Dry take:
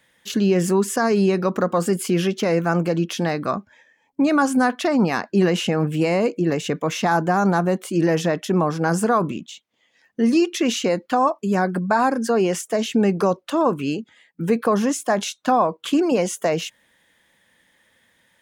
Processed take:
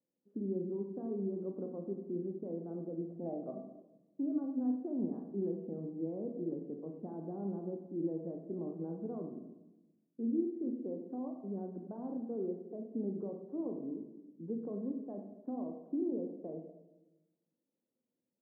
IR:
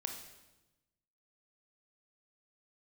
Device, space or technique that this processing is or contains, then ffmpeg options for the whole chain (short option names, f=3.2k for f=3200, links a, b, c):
next room: -filter_complex "[0:a]highpass=780,asettb=1/sr,asplit=3[a][b][c];[a]atrim=end=3.014[d];[b]atrim=start=3.01:end=3.51,asetpts=PTS-STARTPTS,afade=t=in:d=0.004:c=qsin,afade=t=out:st=0.496:d=0.004:c=qsin,equalizer=f=670:t=o:w=0.74:g=13[e];[c]atrim=start=3.506[f];[d][e]acrossfade=d=0.004:c1=hsin:c2=qsin[g];[g][f]acrossfade=d=0.004:c1=qsin:c2=hsin,lowpass=f=300:w=0.5412,lowpass=f=300:w=1.3066[h];[1:a]atrim=start_sample=2205[i];[h][i]afir=irnorm=-1:irlink=0,volume=5dB"